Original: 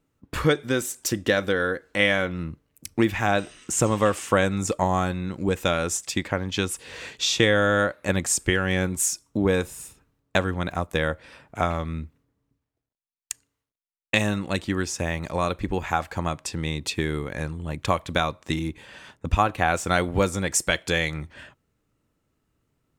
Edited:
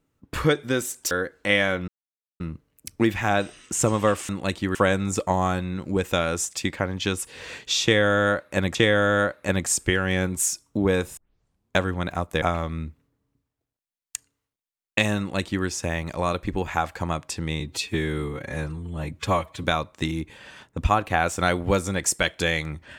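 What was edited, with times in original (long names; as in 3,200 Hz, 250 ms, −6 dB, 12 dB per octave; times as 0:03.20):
0:01.11–0:01.61: remove
0:02.38: splice in silence 0.52 s
0:07.35–0:08.27: repeat, 2 plays
0:09.77: tape start 0.61 s
0:11.02–0:11.58: remove
0:14.35–0:14.81: duplicate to 0:04.27
0:16.76–0:18.12: time-stretch 1.5×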